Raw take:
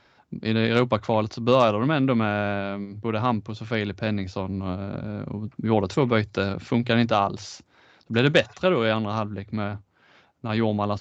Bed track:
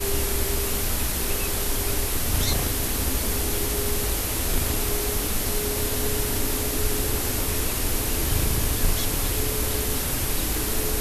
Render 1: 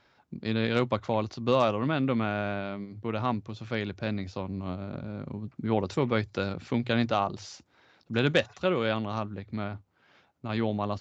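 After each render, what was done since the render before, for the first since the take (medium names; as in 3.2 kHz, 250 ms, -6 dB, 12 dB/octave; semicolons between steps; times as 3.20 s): trim -5.5 dB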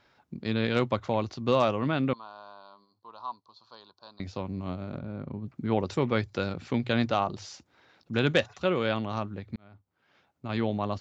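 2.13–4.20 s: two resonant band-passes 2.1 kHz, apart 2.1 oct; 4.98–5.46 s: low-pass 2.3 kHz 6 dB/octave; 9.56–10.57 s: fade in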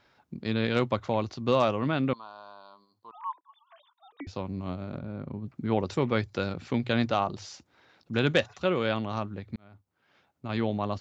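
3.11–4.27 s: formants replaced by sine waves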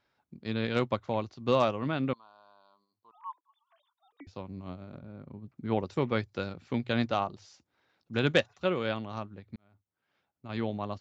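upward expansion 1.5:1, over -43 dBFS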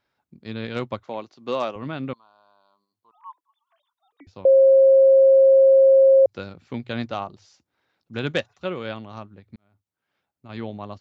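1.03–1.76 s: high-pass 250 Hz; 4.45–6.26 s: bleep 537 Hz -10 dBFS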